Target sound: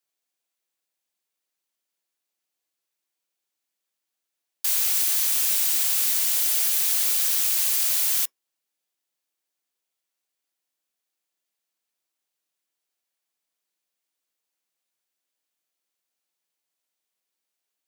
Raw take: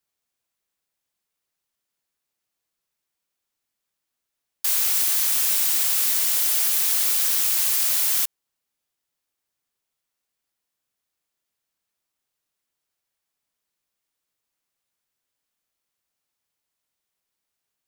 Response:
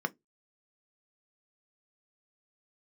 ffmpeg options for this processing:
-filter_complex "[0:a]highpass=300,asplit=2[s0][s1];[1:a]atrim=start_sample=2205,atrim=end_sample=3528[s2];[s1][s2]afir=irnorm=-1:irlink=0,volume=0.178[s3];[s0][s3]amix=inputs=2:normalize=0"

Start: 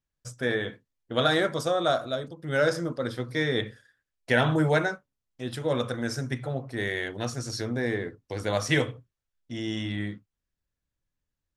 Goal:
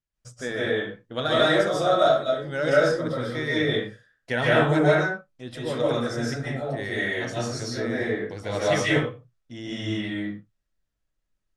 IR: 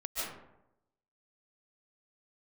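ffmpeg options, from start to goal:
-filter_complex "[0:a]lowpass=9700[s0];[1:a]atrim=start_sample=2205,afade=t=out:st=0.32:d=0.01,atrim=end_sample=14553[s1];[s0][s1]afir=irnorm=-1:irlink=0"

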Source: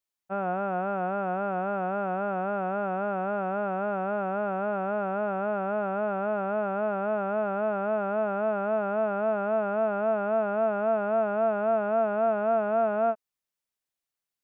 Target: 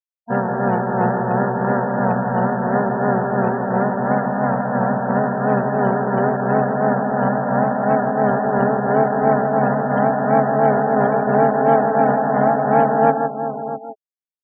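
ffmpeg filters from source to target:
-filter_complex "[0:a]asplit=4[s0][s1][s2][s3];[s1]asetrate=29433,aresample=44100,atempo=1.49831,volume=0.562[s4];[s2]asetrate=52444,aresample=44100,atempo=0.840896,volume=0.794[s5];[s3]asetrate=55563,aresample=44100,atempo=0.793701,volume=0.562[s6];[s0][s4][s5][s6]amix=inputs=4:normalize=0,asplit=2[s7][s8];[s8]adelay=641.4,volume=0.355,highshelf=f=4000:g=-14.4[s9];[s7][s9]amix=inputs=2:normalize=0,asplit=2[s10][s11];[s11]adynamicsmooth=sensitivity=3.5:basefreq=570,volume=1.33[s12];[s10][s12]amix=inputs=2:normalize=0,tremolo=f=2.9:d=0.66,asplit=2[s13][s14];[s14]aecho=0:1:160:0.501[s15];[s13][s15]amix=inputs=2:normalize=0,afftfilt=real='re*gte(hypot(re,im),0.0355)':imag='im*gte(hypot(re,im),0.0355)':win_size=1024:overlap=0.75,bass=f=250:g=7,treble=f=4000:g=-4"

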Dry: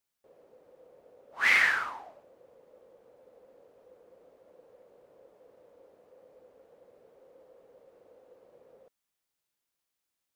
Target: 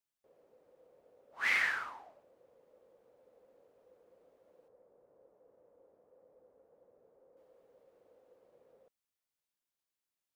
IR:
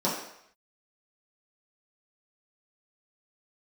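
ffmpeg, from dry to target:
-filter_complex "[0:a]asettb=1/sr,asplit=3[s0][s1][s2];[s0]atrim=end=4.684[s3];[s1]atrim=start=4.68:end=7.37,asetpts=PTS-STARTPTS,afade=t=in:d=0.004:c=qsin,afade=t=out:st=2.686:d=0.004:c=qsin,lowpass=1300[s4];[s2]atrim=start=7.366[s5];[s3][s4]acrossfade=d=0.004:c1=hsin:c2=qsin[s6];[s6][s5]acrossfade=d=0.004:c1=qsin:c2=hsin,volume=0.422"

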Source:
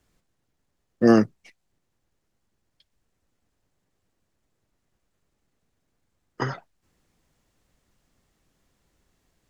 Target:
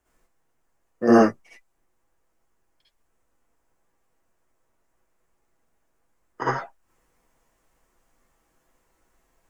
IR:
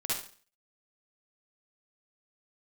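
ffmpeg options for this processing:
-filter_complex "[0:a]equalizer=f=125:t=o:w=1:g=-12,equalizer=f=250:t=o:w=1:g=-3,equalizer=f=1000:t=o:w=1:g=4,equalizer=f=4000:t=o:w=1:g=-9[s0];[1:a]atrim=start_sample=2205,atrim=end_sample=3969[s1];[s0][s1]afir=irnorm=-1:irlink=0"

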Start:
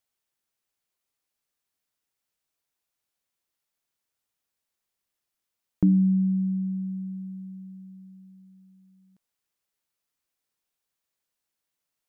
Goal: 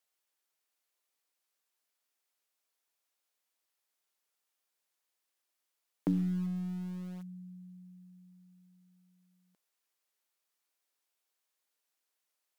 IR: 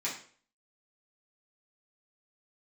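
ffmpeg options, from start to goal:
-filter_complex "[0:a]highpass=390,asetrate=42336,aresample=44100,asplit=2[s0][s1];[s1]acrusher=bits=4:dc=4:mix=0:aa=0.000001,volume=0.282[s2];[s0][s2]amix=inputs=2:normalize=0"

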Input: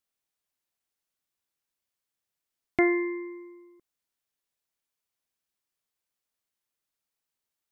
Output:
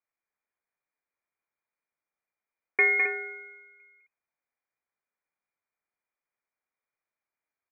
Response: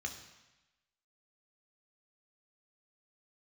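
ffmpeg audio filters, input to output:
-af "equalizer=f=88:w=0.97:g=7,aecho=1:1:207|265.3:0.562|0.398,lowpass=f=2100:t=q:w=0.5098,lowpass=f=2100:t=q:w=0.6013,lowpass=f=2100:t=q:w=0.9,lowpass=f=2100:t=q:w=2.563,afreqshift=-2500"

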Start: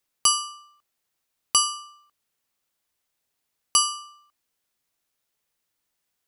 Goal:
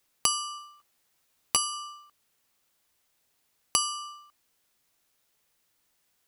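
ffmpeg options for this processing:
-filter_complex "[0:a]acompressor=threshold=0.0282:ratio=4,asettb=1/sr,asplit=3[s0][s1][s2];[s0]atrim=end=0.574[s3];[s1]atrim=start=0.57:end=1.73,asetpts=PTS-STARTPTS,afade=t=in:d=0.004:c=qsin,afade=t=out:st=1.156:d=0.004:c=qsin,asplit=2[s4][s5];[s5]adelay=13,volume=0.473[s6];[s4][s6]amix=inputs=2:normalize=0,atrim=end_sample=51156[s7];[s2]atrim=start=1.726[s8];[s3][s7]acrossfade=d=0.004:c1=hsin:c2=qsin[s9];[s9][s8]acrossfade=d=0.004:c1=qsin:c2=hsin,volume=2"

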